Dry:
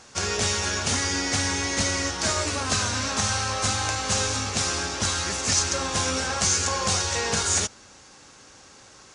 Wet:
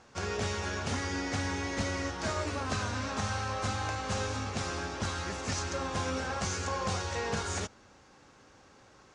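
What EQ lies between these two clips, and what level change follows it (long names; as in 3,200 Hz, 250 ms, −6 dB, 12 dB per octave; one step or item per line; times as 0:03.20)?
low-pass filter 1,600 Hz 6 dB per octave
−4.5 dB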